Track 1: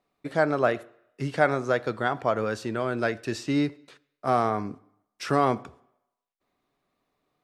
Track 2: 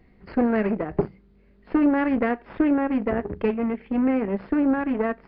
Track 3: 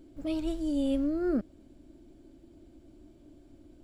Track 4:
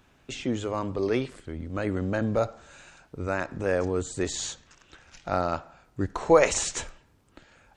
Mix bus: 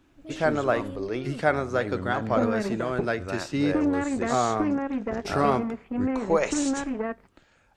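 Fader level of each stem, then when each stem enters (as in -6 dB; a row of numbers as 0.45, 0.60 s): -1.0, -5.5, -10.5, -5.0 dB; 0.05, 2.00, 0.00, 0.00 s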